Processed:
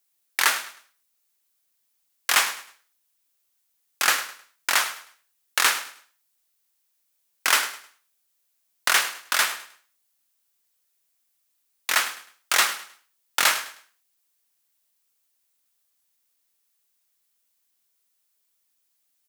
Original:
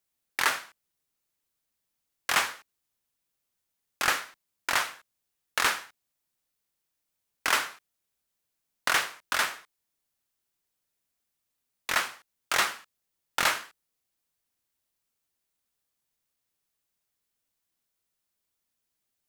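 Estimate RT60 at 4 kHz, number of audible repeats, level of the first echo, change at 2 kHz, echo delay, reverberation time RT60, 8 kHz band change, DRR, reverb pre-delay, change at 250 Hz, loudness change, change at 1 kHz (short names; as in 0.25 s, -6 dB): none, 2, -14.5 dB, +4.5 dB, 0.104 s, none, +8.5 dB, none, none, -1.5 dB, +5.5 dB, +3.0 dB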